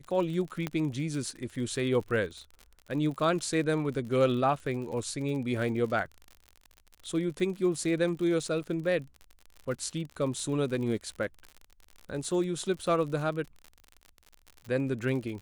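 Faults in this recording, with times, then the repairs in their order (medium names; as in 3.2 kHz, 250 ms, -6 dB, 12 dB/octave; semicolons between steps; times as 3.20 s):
crackle 58 per s -37 dBFS
0.67 s: pop -17 dBFS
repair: de-click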